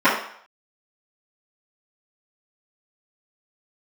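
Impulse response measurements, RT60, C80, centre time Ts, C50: 0.60 s, 8.5 dB, 37 ms, 5.0 dB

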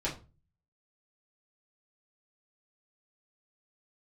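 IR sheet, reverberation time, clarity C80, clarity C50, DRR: 0.30 s, 17.0 dB, 11.0 dB, -7.0 dB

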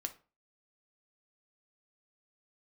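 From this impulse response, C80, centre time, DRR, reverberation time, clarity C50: 22.0 dB, 5 ms, 6.5 dB, 0.35 s, 15.0 dB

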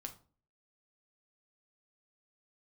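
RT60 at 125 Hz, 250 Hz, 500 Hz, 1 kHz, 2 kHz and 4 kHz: 0.55 s, 0.55 s, 0.45 s, 0.35 s, 0.30 s, 0.25 s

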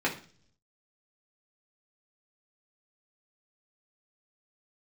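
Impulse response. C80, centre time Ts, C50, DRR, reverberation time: 16.0 dB, 16 ms, 11.0 dB, -4.0 dB, 0.45 s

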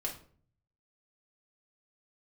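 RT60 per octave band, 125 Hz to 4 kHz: 1.0 s, 0.65 s, 0.55 s, 0.45 s, 0.35 s, 0.30 s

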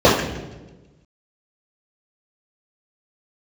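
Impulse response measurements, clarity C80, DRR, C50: 7.0 dB, -10.0 dB, 3.5 dB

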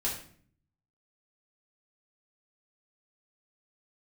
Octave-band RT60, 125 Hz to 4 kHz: 1.0 s, 0.85 s, 0.55 s, 0.50 s, 0.50 s, 0.40 s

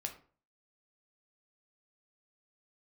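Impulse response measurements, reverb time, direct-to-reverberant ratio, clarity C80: 0.45 s, 4.0 dB, 15.5 dB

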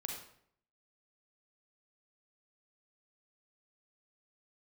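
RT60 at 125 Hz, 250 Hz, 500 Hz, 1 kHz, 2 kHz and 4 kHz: 0.75 s, 0.70 s, 0.70 s, 0.60 s, 0.55 s, 0.50 s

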